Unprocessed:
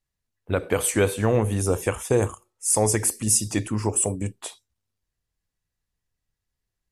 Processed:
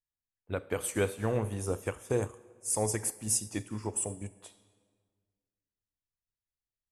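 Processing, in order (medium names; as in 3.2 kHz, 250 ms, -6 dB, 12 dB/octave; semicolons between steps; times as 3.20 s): on a send at -11 dB: bass shelf 260 Hz -7.5 dB + reverberation RT60 1.7 s, pre-delay 39 ms; on the sum: upward expansion 1.5:1, over -35 dBFS; trim -8 dB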